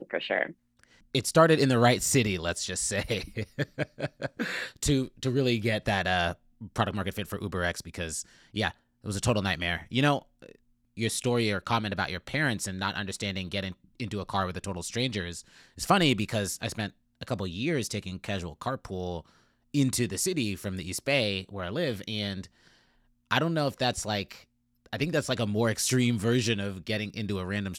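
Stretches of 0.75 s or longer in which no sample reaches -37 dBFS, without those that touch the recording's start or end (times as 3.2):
22.45–23.31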